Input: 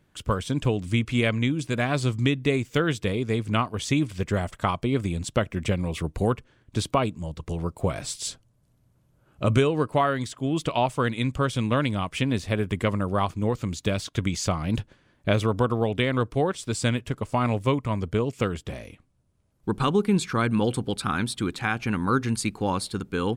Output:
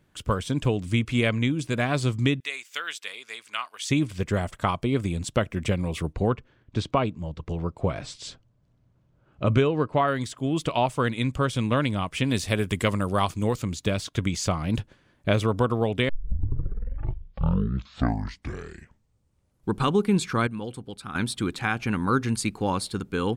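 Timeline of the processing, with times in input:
2.40–3.90 s: high-pass 1.5 kHz
6.13–10.08 s: distance through air 120 m
12.24–13.62 s: treble shelf 3.2 kHz +10.5 dB
16.09 s: tape start 3.62 s
20.47–21.15 s: gain -10.5 dB

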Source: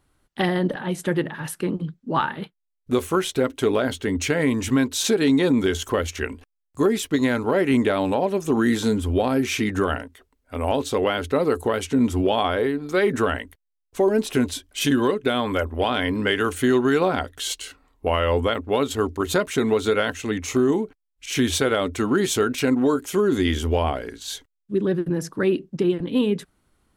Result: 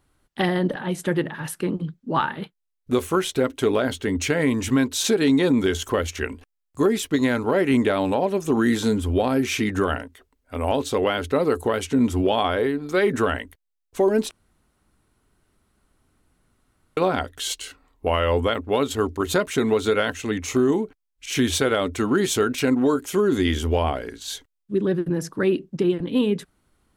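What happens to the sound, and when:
14.31–16.97 s: room tone

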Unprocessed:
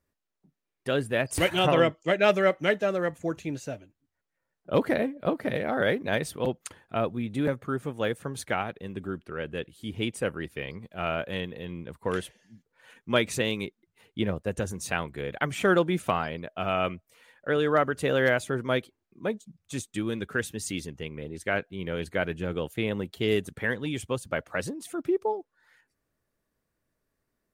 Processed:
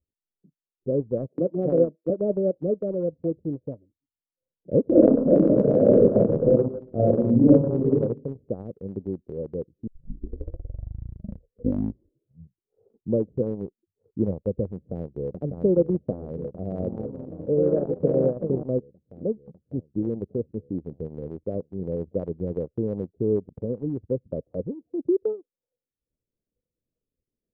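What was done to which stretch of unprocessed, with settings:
1.28–2.10 s: steep high-pass 160 Hz
4.85–7.95 s: reverb throw, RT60 0.8 s, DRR -10 dB
9.87 s: tape start 3.46 s
14.74–15.39 s: echo throw 600 ms, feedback 80%, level -2 dB
16.58–18.75 s: ever faster or slower copies 228 ms, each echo +3 st, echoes 3
22.20–23.53 s: elliptic low-pass 9.1 kHz
whole clip: spectral noise reduction 10 dB; elliptic low-pass 520 Hz, stop band 70 dB; transient shaper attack +2 dB, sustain -10 dB; trim +3.5 dB

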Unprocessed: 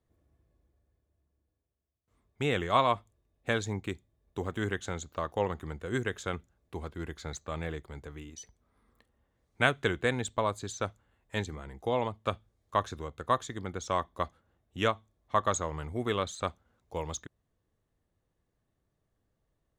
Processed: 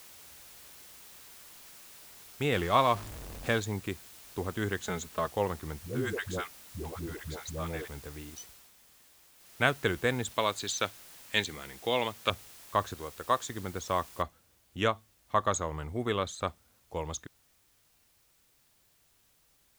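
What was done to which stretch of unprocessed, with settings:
2.52–3.60 s: jump at every zero crossing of -37.5 dBFS
4.83–5.27 s: comb 4.7 ms, depth 89%
5.79–7.88 s: phase dispersion highs, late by 124 ms, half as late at 400 Hz
8.39–9.69 s: dip -8.5 dB, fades 0.34 s
10.31–12.30 s: frequency weighting D
12.94–13.50 s: tone controls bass -7 dB, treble +5 dB
14.22 s: noise floor step -52 dB -68 dB

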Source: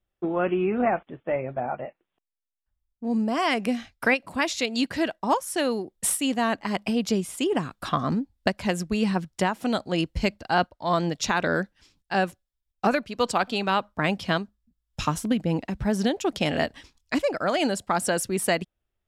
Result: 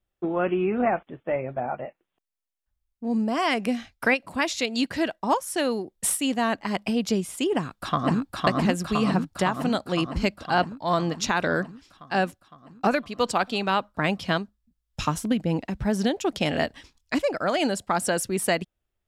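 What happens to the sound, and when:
7.53–8.36 s: echo throw 510 ms, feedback 70%, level -0.5 dB

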